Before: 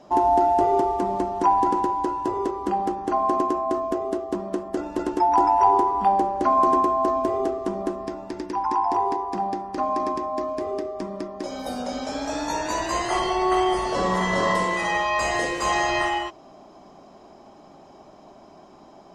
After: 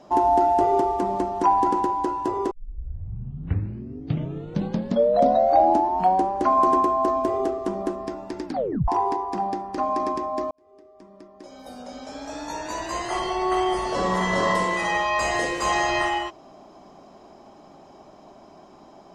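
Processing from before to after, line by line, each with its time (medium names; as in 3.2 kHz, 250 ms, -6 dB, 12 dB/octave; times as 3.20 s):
2.51 s: tape start 3.80 s
8.46 s: tape stop 0.42 s
10.51–14.32 s: fade in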